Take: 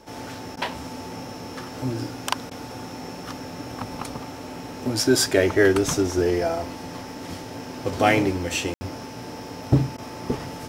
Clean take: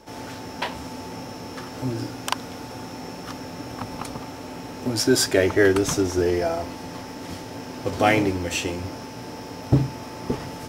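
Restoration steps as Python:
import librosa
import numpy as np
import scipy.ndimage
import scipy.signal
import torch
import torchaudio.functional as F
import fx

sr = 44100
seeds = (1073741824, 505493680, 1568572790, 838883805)

y = fx.fix_ambience(x, sr, seeds[0], print_start_s=0.0, print_end_s=0.5, start_s=8.74, end_s=8.81)
y = fx.fix_interpolate(y, sr, at_s=(0.56, 2.5, 9.97), length_ms=10.0)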